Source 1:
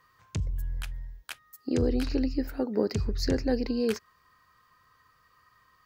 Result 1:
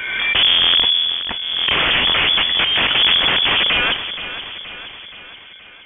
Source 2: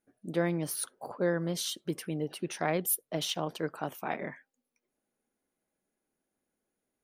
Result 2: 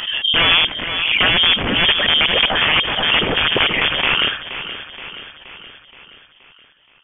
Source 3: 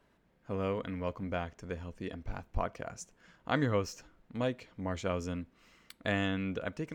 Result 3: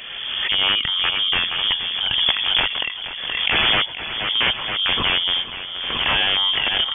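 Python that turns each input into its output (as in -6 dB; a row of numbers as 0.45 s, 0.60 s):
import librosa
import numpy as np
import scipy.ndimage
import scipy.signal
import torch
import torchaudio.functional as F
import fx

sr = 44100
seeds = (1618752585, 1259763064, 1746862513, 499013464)

p1 = fx.rider(x, sr, range_db=3, speed_s=2.0)
p2 = x + F.gain(torch.from_numpy(p1), 0.0).numpy()
p3 = (np.mod(10.0 ** (20.5 / 20.0) * p2 + 1.0, 2.0) - 1.0) / 10.0 ** (20.5 / 20.0)
p4 = fx.echo_feedback(p3, sr, ms=474, feedback_pct=56, wet_db=-12.0)
p5 = fx.freq_invert(p4, sr, carrier_hz=3400)
p6 = fx.pre_swell(p5, sr, db_per_s=32.0)
y = librosa.util.normalize(p6) * 10.0 ** (-3 / 20.0)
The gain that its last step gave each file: +9.5 dB, +13.0 dB, +8.5 dB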